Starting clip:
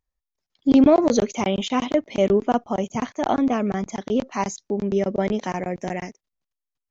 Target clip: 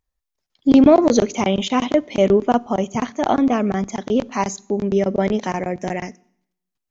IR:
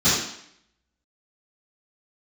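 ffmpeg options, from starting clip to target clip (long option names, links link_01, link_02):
-filter_complex "[0:a]asplit=2[link_01][link_02];[1:a]atrim=start_sample=2205,adelay=11[link_03];[link_02][link_03]afir=irnorm=-1:irlink=0,volume=-42.5dB[link_04];[link_01][link_04]amix=inputs=2:normalize=0,volume=3.5dB"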